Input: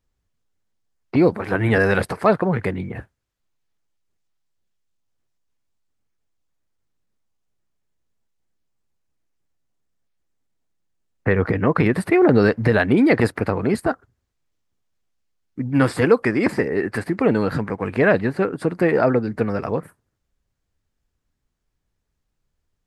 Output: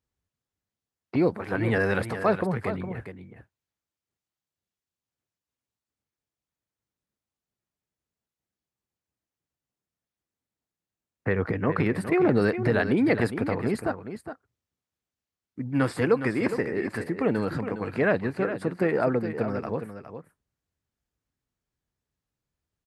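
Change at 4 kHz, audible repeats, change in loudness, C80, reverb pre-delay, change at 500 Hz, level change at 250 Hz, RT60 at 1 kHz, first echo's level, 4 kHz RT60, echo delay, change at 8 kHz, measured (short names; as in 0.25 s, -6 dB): -6.5 dB, 1, -6.5 dB, none, none, -6.5 dB, -6.5 dB, none, -10.0 dB, none, 0.412 s, n/a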